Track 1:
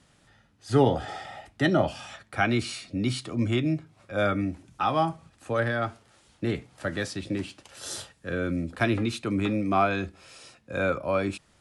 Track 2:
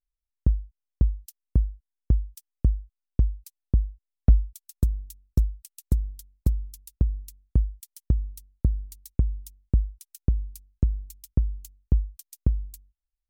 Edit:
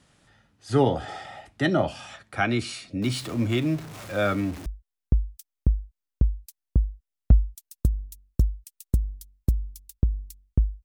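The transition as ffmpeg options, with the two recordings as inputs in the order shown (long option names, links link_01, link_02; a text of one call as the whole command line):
ffmpeg -i cue0.wav -i cue1.wav -filter_complex "[0:a]asettb=1/sr,asplit=3[link_01][link_02][link_03];[link_01]atrim=end=3.024[link_04];[link_02]atrim=start=3.02:end=4.66,asetpts=PTS-STARTPTS,afade=type=in:duration=0.004:curve=qsin,afade=type=out:start_time=1.636:duration=0.004:curve=qsin,aeval=exprs='val(0)+0.5*0.0168*sgn(val(0))':channel_layout=same[link_05];[link_03]atrim=start=4.656[link_06];[link_04][link_05]acrossfade=duration=0.004:curve1=hsin:curve2=qsin[link_07];[link_07][link_06]acrossfade=duration=0.004:curve1=qsin:curve2=hsin,apad=whole_dur=10.84,atrim=end=10.84,atrim=end=4.662[link_08];[1:a]atrim=start=1.638:end=7.82[link_09];[link_08][link_09]acrossfade=duration=0.004:curve1=hsin:curve2=hsin" out.wav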